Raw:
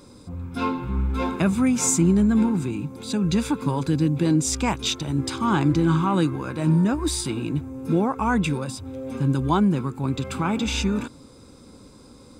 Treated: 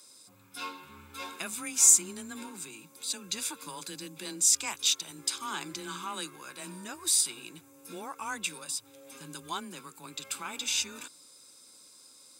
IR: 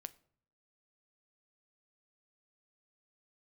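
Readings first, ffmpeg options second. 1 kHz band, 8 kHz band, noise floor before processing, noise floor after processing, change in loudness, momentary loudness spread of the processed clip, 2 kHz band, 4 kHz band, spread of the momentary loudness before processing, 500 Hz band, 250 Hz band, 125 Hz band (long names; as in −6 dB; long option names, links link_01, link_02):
−13.0 dB, +4.0 dB, −48 dBFS, −56 dBFS, −5.5 dB, 21 LU, −7.0 dB, −1.0 dB, 10 LU, −19.0 dB, −24.5 dB, −30.5 dB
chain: -af "afreqshift=19,aderivative,volume=4dB"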